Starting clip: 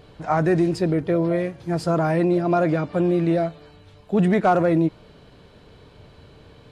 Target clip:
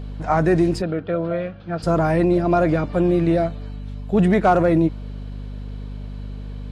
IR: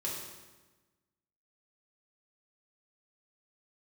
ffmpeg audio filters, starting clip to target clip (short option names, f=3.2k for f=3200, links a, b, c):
-filter_complex "[0:a]aeval=exprs='val(0)+0.0251*(sin(2*PI*50*n/s)+sin(2*PI*2*50*n/s)/2+sin(2*PI*3*50*n/s)/3+sin(2*PI*4*50*n/s)/4+sin(2*PI*5*50*n/s)/5)':c=same,asplit=3[a][b][c];[a]afade=t=out:st=0.81:d=0.02[d];[b]highpass=120,equalizer=f=140:t=q:w=4:g=-9,equalizer=f=250:t=q:w=4:g=-8,equalizer=f=370:t=q:w=4:g=-9,equalizer=f=940:t=q:w=4:g=-7,equalizer=f=1.4k:t=q:w=4:g=7,equalizer=f=2k:t=q:w=4:g=-8,lowpass=f=3.7k:w=0.5412,lowpass=f=3.7k:w=1.3066,afade=t=in:st=0.81:d=0.02,afade=t=out:st=1.82:d=0.02[e];[c]afade=t=in:st=1.82:d=0.02[f];[d][e][f]amix=inputs=3:normalize=0,volume=2dB"